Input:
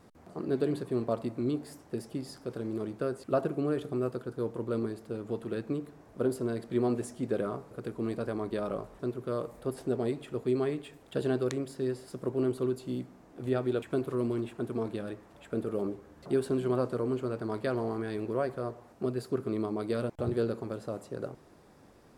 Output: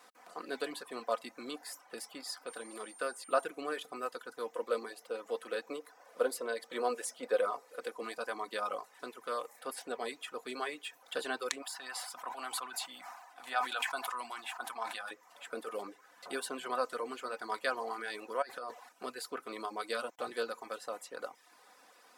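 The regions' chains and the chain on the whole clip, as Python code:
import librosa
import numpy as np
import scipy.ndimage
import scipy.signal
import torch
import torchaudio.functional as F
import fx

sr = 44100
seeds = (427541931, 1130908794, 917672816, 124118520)

y = fx.highpass(x, sr, hz=100.0, slope=12, at=(2.46, 3.44), fade=0.02)
y = fx.dmg_tone(y, sr, hz=9000.0, level_db=-60.0, at=(2.46, 3.44), fade=0.02)
y = fx.chain(y, sr, fx.highpass(hz=150.0, slope=12),
    fx.peak_eq(hz=510.0, db=9.0, octaves=0.42),
    fx.notch(hz=7200.0, q=29.0), at=(4.55, 8.03))
y = fx.chain(y, sr, fx.low_shelf_res(hz=600.0, db=-9.0, q=3.0),
    fx.sustainer(db_per_s=41.0), at=(11.62, 15.11))
y = fx.chain(y, sr, fx.peak_eq(hz=4300.0, db=3.5, octaves=0.37),
    fx.over_compress(threshold_db=-38.0, ratio=-1.0), at=(18.42, 18.89))
y = fx.dereverb_blind(y, sr, rt60_s=0.56)
y = scipy.signal.sosfilt(scipy.signal.butter(2, 980.0, 'highpass', fs=sr, output='sos'), y)
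y = y + 0.51 * np.pad(y, (int(4.0 * sr / 1000.0), 0))[:len(y)]
y = F.gain(torch.from_numpy(y), 6.0).numpy()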